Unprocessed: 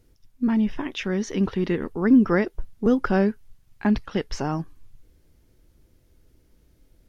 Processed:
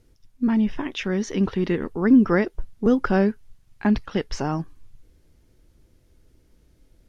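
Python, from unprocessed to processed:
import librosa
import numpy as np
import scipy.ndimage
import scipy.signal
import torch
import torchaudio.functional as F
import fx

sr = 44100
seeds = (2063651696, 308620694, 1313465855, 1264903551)

y = scipy.signal.sosfilt(scipy.signal.butter(2, 12000.0, 'lowpass', fs=sr, output='sos'), x)
y = F.gain(torch.from_numpy(y), 1.0).numpy()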